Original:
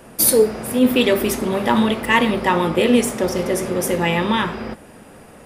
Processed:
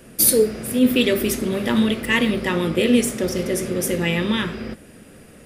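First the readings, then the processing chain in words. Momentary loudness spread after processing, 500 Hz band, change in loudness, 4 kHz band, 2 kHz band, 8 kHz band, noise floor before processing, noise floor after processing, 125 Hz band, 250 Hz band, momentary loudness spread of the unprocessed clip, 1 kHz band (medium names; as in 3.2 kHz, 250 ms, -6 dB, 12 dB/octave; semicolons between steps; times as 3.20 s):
8 LU, -3.0 dB, -2.0 dB, -0.5 dB, -2.5 dB, 0.0 dB, -43 dBFS, -46 dBFS, -0.5 dB, -1.0 dB, 6 LU, -11.0 dB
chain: peaking EQ 890 Hz -13 dB 1 oct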